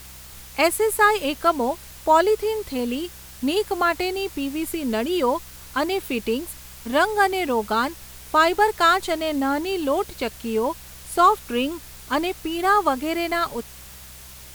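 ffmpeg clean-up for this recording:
-af "bandreject=f=64.1:t=h:w=4,bandreject=f=128.2:t=h:w=4,bandreject=f=192.3:t=h:w=4,afftdn=nr=24:nf=-42"

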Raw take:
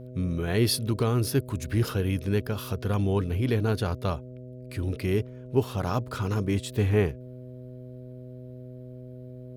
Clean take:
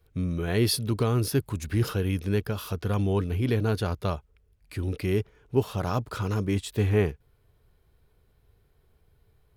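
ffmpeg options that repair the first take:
-af "bandreject=f=125.9:t=h:w=4,bandreject=f=251.8:t=h:w=4,bandreject=f=377.7:t=h:w=4,bandreject=f=503.6:t=h:w=4,bandreject=f=629.5:t=h:w=4"

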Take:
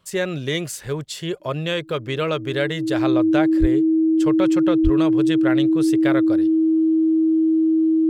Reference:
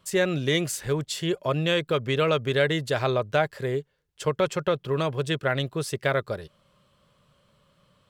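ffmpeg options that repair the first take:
-filter_complex "[0:a]bandreject=f=320:w=30,asplit=3[s0][s1][s2];[s0]afade=t=out:st=3.6:d=0.02[s3];[s1]highpass=f=140:w=0.5412,highpass=f=140:w=1.3066,afade=t=in:st=3.6:d=0.02,afade=t=out:st=3.72:d=0.02[s4];[s2]afade=t=in:st=3.72:d=0.02[s5];[s3][s4][s5]amix=inputs=3:normalize=0,asplit=3[s6][s7][s8];[s6]afade=t=out:st=4.83:d=0.02[s9];[s7]highpass=f=140:w=0.5412,highpass=f=140:w=1.3066,afade=t=in:st=4.83:d=0.02,afade=t=out:st=4.95:d=0.02[s10];[s8]afade=t=in:st=4.95:d=0.02[s11];[s9][s10][s11]amix=inputs=3:normalize=0"

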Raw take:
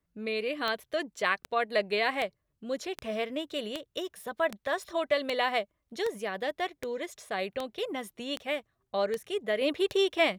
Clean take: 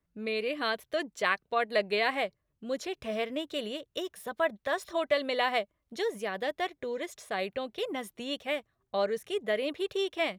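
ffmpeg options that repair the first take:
-af "adeclick=t=4,asetnsamples=n=441:p=0,asendcmd='9.61 volume volume -5dB',volume=1"

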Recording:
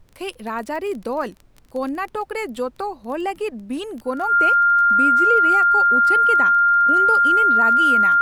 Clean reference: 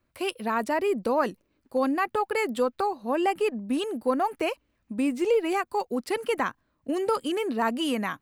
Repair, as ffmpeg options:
-af "adeclick=t=4,bandreject=f=1400:w=30,agate=range=0.0891:threshold=0.0112"

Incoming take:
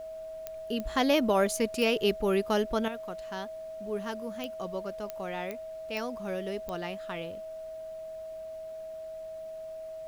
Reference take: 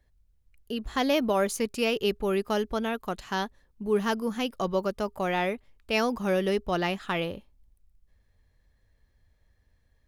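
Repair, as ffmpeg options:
-af "adeclick=t=4,bandreject=f=640:w=30,agate=range=0.0891:threshold=0.0224,asetnsamples=n=441:p=0,asendcmd='2.88 volume volume 9.5dB',volume=1"

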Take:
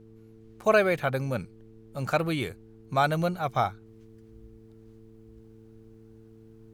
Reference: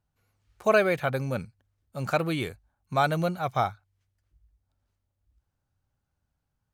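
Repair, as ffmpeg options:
-af "bandreject=f=111.2:t=h:w=4,bandreject=f=222.4:t=h:w=4,bandreject=f=333.6:t=h:w=4,bandreject=f=444.8:t=h:w=4,agate=range=0.0891:threshold=0.00631,asetnsamples=n=441:p=0,asendcmd='3.86 volume volume -10dB',volume=1"

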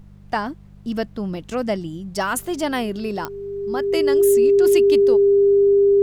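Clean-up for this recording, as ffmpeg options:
-af "adeclick=t=4,bandreject=f=49.4:t=h:w=4,bandreject=f=98.8:t=h:w=4,bandreject=f=148.2:t=h:w=4,bandreject=f=197.6:t=h:w=4,bandreject=f=400:w=30,agate=range=0.0891:threshold=0.0178"

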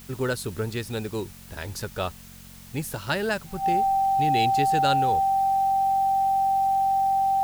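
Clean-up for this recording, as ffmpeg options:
-af "bandreject=f=45.3:t=h:w=4,bandreject=f=90.6:t=h:w=4,bandreject=f=135.9:t=h:w=4,bandreject=f=181.2:t=h:w=4,bandreject=f=226.5:t=h:w=4,bandreject=f=780:w=30,afftdn=nr=26:nf=-45"

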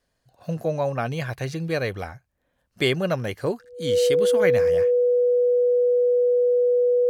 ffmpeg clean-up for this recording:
-af "bandreject=f=490:w=30"

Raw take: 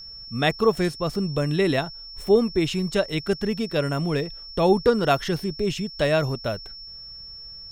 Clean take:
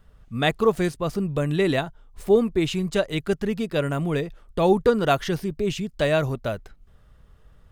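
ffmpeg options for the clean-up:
-af "bandreject=f=5400:w=30"

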